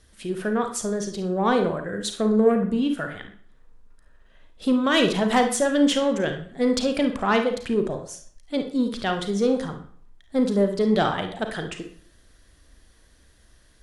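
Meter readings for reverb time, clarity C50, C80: 0.55 s, 7.5 dB, 13.0 dB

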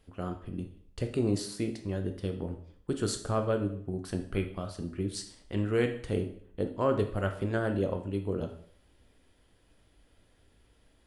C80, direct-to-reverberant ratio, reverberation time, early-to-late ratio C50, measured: 13.5 dB, 5.0 dB, 0.55 s, 9.5 dB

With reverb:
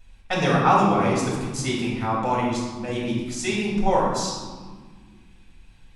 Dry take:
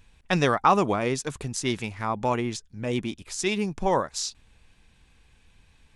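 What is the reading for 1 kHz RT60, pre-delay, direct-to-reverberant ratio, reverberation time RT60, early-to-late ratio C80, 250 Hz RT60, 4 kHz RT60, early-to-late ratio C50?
1.5 s, 3 ms, −5.0 dB, 1.6 s, 3.5 dB, 2.6 s, 1.0 s, 1.0 dB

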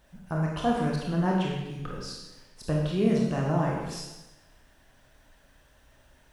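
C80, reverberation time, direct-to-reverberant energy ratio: 3.5 dB, 1.0 s, −2.5 dB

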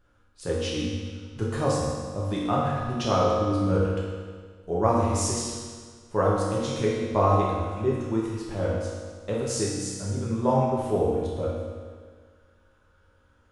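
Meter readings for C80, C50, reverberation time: 1.0 dB, −1.0 dB, 1.7 s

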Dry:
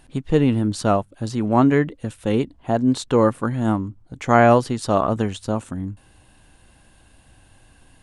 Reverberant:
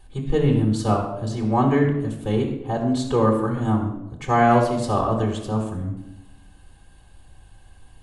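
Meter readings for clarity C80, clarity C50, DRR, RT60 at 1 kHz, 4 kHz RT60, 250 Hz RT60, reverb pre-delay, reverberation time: 8.0 dB, 5.0 dB, −1.5 dB, 0.80 s, 0.60 s, 1.2 s, 3 ms, 0.90 s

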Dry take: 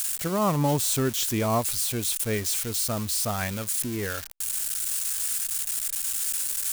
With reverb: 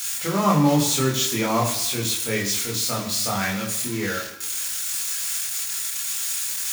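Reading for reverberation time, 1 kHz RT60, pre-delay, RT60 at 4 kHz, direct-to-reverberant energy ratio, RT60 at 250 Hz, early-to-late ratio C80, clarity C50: 1.0 s, 1.1 s, 18 ms, 0.95 s, −2.5 dB, 0.95 s, 10.5 dB, 8.0 dB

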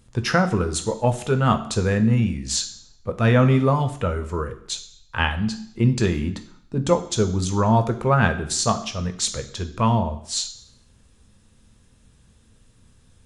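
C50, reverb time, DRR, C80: 13.5 dB, 0.70 s, 7.0 dB, 16.0 dB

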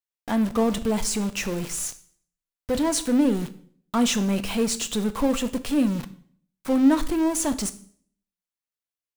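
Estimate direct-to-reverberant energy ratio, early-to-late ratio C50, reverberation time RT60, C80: 10.5 dB, 16.0 dB, 0.55 s, 19.5 dB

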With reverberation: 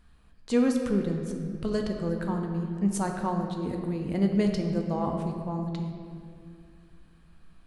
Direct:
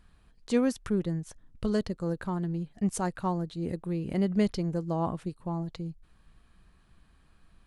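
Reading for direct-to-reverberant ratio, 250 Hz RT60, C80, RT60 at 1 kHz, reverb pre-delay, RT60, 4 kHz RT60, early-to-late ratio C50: 2.5 dB, 3.1 s, 5.5 dB, 2.1 s, 4 ms, 2.3 s, 1.5 s, 4.5 dB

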